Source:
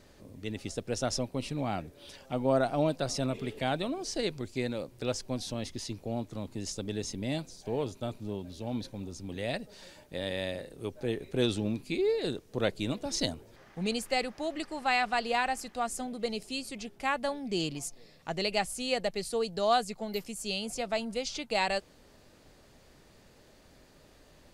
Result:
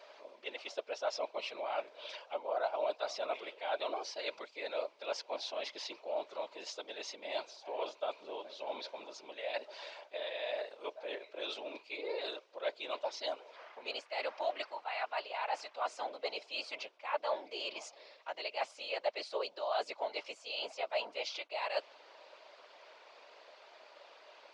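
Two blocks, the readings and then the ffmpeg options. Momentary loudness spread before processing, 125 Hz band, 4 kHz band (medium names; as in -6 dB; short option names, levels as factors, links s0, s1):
10 LU, under -40 dB, -5.0 dB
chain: -af "equalizer=f=2000:t=o:w=2.4:g=13.5,areverse,acompressor=threshold=0.0282:ratio=10,areverse,acrusher=bits=10:mix=0:aa=0.000001,afftfilt=real='hypot(re,im)*cos(2*PI*random(0))':imag='hypot(re,im)*sin(2*PI*random(1))':win_size=512:overlap=0.75,highpass=f=420:w=0.5412,highpass=f=420:w=1.3066,equalizer=f=610:t=q:w=4:g=9,equalizer=f=960:t=q:w=4:g=7,equalizer=f=1800:t=q:w=4:g=-8,lowpass=f=5400:w=0.5412,lowpass=f=5400:w=1.3066,volume=1.19"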